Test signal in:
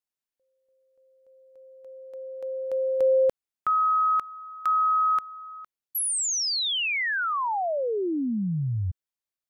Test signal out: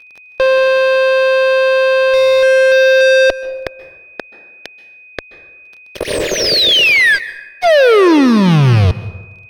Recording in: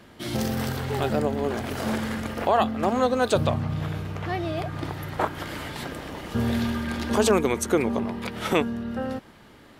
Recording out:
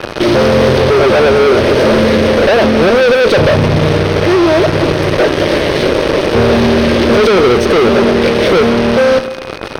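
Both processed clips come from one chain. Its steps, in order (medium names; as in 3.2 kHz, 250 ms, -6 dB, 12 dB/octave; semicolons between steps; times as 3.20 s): one-bit delta coder 64 kbps, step -35.5 dBFS; elliptic band-stop 600–1700 Hz, stop band 40 dB; high-order bell 560 Hz +13 dB; fuzz box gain 35 dB, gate -33 dBFS; whistle 2.5 kHz -43 dBFS; Chebyshev shaper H 2 -21 dB, 3 -22 dB, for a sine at -10 dBFS; Savitzky-Golay filter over 15 samples; plate-style reverb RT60 1.1 s, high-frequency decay 0.5×, pre-delay 120 ms, DRR 15.5 dB; trim +7 dB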